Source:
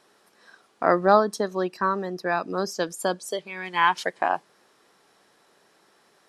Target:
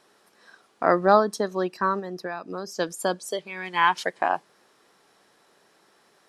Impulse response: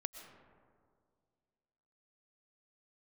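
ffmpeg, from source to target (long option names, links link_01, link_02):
-filter_complex "[0:a]asplit=3[link_01][link_02][link_03];[link_01]afade=type=out:start_time=1.99:duration=0.02[link_04];[link_02]acompressor=threshold=-29dB:ratio=6,afade=type=in:start_time=1.99:duration=0.02,afade=type=out:start_time=2.77:duration=0.02[link_05];[link_03]afade=type=in:start_time=2.77:duration=0.02[link_06];[link_04][link_05][link_06]amix=inputs=3:normalize=0"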